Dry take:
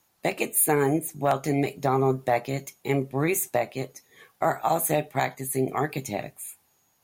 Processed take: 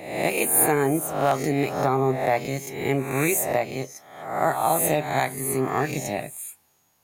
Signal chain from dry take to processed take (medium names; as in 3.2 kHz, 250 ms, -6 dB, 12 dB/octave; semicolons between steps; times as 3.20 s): reverse spectral sustain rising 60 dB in 0.76 s